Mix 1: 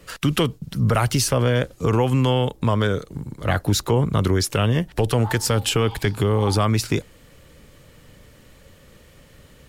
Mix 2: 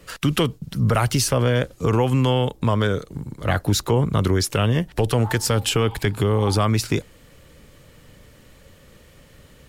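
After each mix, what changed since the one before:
background: add air absorption 300 m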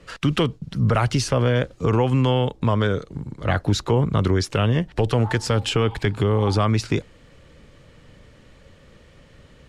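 master: add air absorption 81 m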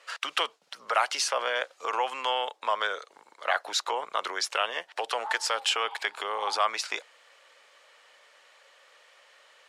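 master: add HPF 680 Hz 24 dB/oct

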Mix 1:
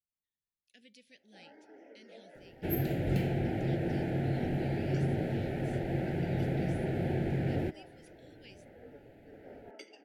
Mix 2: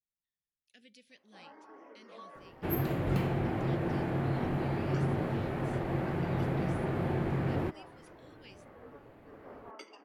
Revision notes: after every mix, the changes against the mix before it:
master: remove Butterworth band-stop 1100 Hz, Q 1.4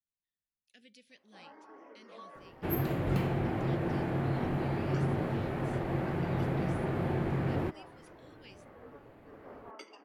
none

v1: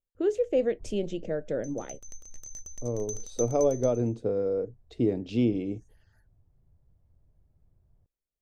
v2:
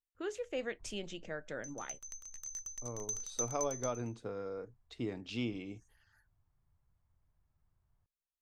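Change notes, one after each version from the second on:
master: add resonant low shelf 760 Hz -11.5 dB, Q 1.5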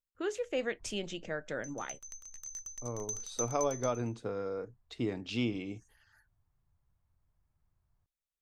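speech +4.5 dB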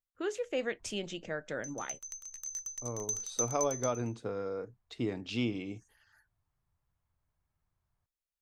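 background: add tilt +1.5 dB/oct

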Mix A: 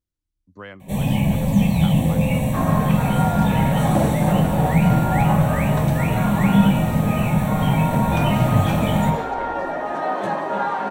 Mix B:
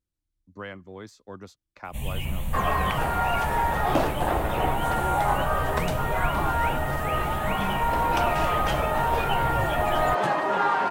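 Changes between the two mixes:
first sound: entry +1.05 s; second sound +5.0 dB; reverb: off

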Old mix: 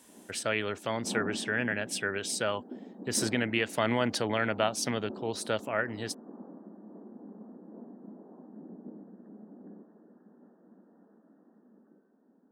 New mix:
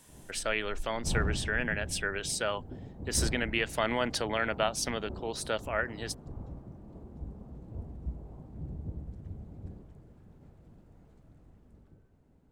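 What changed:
background: remove brick-wall FIR band-pass 190–1900 Hz; master: add low shelf 250 Hz -9 dB

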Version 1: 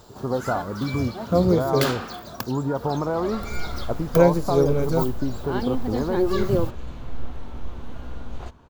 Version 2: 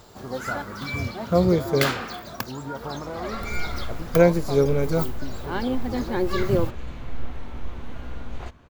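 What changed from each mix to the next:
speech -10.0 dB; master: add bell 2100 Hz +6.5 dB 0.74 oct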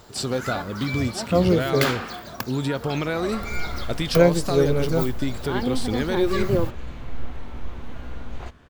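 speech: remove ladder low-pass 1100 Hz, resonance 60%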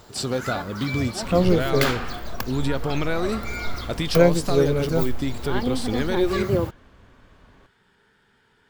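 second sound: entry -2.10 s

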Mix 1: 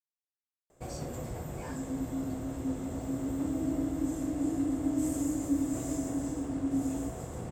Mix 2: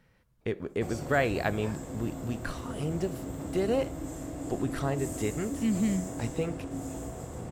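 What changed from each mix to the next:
speech: unmuted; second sound: add tilt +4.5 dB/oct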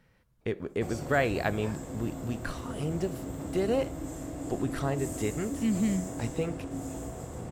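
none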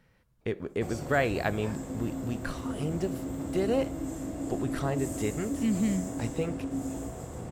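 second sound: remove vowel filter u

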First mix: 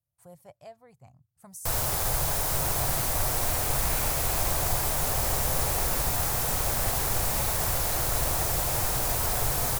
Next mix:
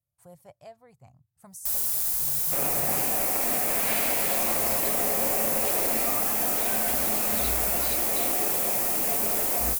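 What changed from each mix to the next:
first sound: add pre-emphasis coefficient 0.9; second sound +9.0 dB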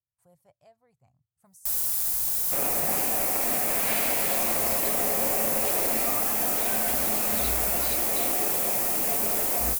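speech -11.0 dB

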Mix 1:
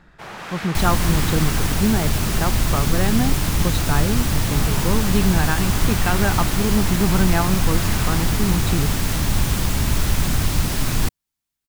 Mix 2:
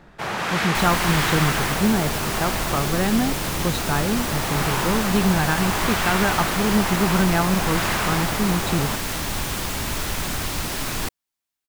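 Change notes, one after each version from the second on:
first sound +8.5 dB; second sound: add tone controls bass -11 dB, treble -2 dB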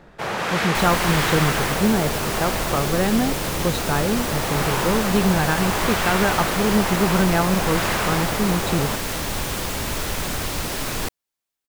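master: add bell 500 Hz +5 dB 0.66 oct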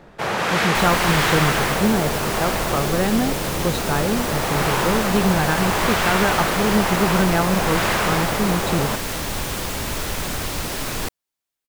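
first sound +3.0 dB

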